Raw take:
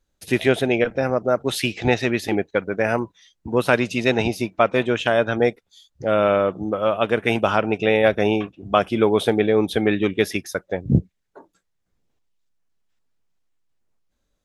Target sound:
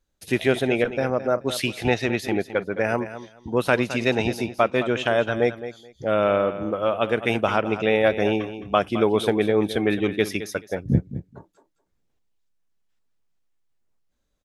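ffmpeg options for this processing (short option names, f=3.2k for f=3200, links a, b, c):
-af "aecho=1:1:214|428:0.237|0.0427,volume=-2.5dB"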